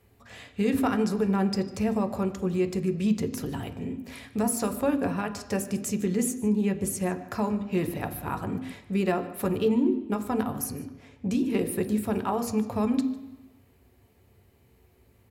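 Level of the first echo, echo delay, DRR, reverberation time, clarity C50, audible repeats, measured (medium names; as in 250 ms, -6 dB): -20.0 dB, 150 ms, 6.0 dB, 1.0 s, 12.0 dB, 1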